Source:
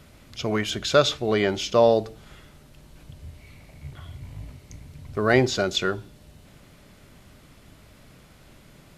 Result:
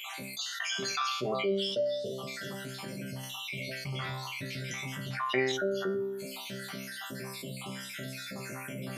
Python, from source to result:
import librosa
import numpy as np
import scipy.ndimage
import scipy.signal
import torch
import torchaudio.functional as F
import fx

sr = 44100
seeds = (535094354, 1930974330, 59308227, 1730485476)

y = fx.spec_dropout(x, sr, seeds[0], share_pct=68)
y = scipy.signal.sosfilt(scipy.signal.butter(4, 140.0, 'highpass', fs=sr, output='sos'), y)
y = fx.peak_eq(y, sr, hz=7700.0, db=-2.5, octaves=0.77)
y = fx.resonator_bank(y, sr, root=48, chord='fifth', decay_s=0.43)
y = fx.peak_eq(y, sr, hz=2400.0, db=9.5, octaves=2.8, at=(3.23, 5.52))
y = fx.spec_box(y, sr, start_s=5.57, length_s=0.62, low_hz=1900.0, high_hz=10000.0, gain_db=-16)
y = fx.env_flatten(y, sr, amount_pct=70)